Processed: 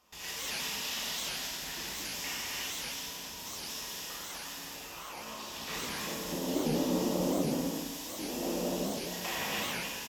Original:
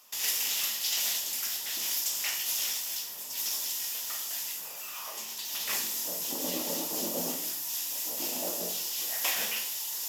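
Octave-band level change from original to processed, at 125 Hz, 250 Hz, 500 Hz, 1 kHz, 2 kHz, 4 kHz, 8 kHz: +12.5, +9.0, +5.5, +3.0, 0.0, -4.0, -8.0 dB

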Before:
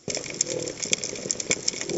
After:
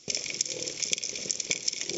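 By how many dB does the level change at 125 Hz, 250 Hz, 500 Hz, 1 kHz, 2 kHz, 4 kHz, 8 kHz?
-10.0 dB, -10.0 dB, -9.5 dB, -10.5 dB, -4.0 dB, -0.5 dB, n/a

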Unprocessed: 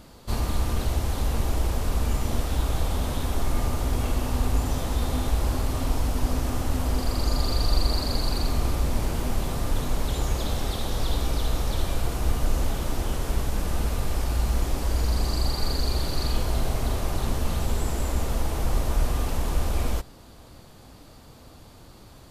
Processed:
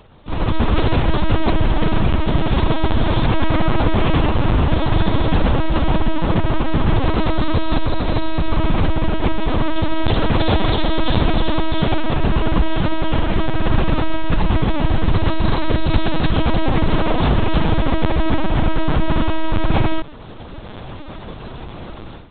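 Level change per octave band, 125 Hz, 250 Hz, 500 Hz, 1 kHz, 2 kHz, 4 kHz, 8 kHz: +8.0 dB, +13.0 dB, +11.0 dB, +11.5 dB, +12.5 dB, +6.5 dB, under -35 dB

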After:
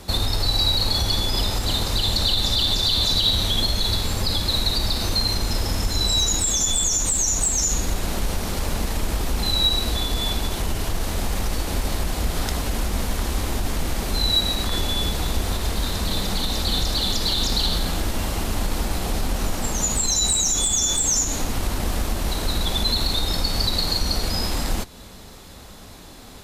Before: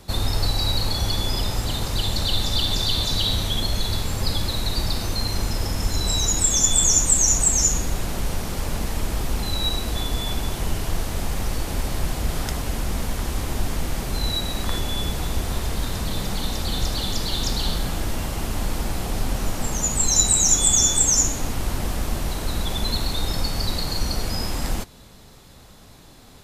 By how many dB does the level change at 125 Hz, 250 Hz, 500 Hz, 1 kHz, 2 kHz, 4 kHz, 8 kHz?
0.0, +1.0, +1.5, +1.5, +1.5, +4.5, -2.5 dB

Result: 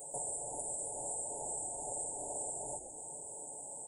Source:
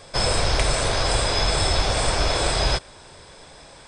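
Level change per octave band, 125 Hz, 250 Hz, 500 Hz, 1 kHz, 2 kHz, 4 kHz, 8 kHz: -32.0 dB, -22.0 dB, -19.5 dB, -20.0 dB, under -40 dB, under -40 dB, -7.0 dB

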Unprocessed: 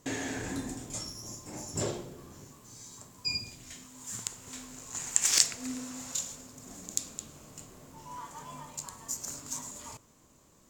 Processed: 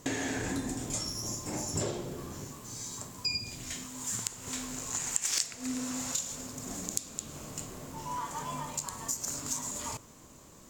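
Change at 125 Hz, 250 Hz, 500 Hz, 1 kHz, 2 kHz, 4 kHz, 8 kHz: +3.5, +3.5, +2.0, +5.5, +1.0, -1.5, -0.5 dB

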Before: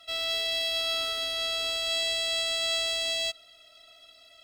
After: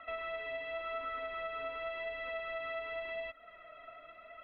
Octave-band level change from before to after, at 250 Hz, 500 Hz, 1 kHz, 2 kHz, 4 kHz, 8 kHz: n/a, -3.0 dB, -0.5 dB, -7.5 dB, -27.0 dB, under -40 dB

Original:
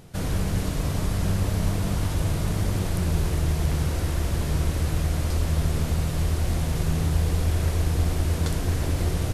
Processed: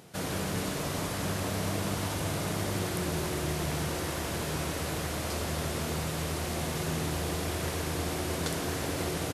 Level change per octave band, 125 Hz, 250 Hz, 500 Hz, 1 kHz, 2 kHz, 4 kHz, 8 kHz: -11.0, -4.0, -0.5, +0.5, +1.0, +0.5, +0.5 dB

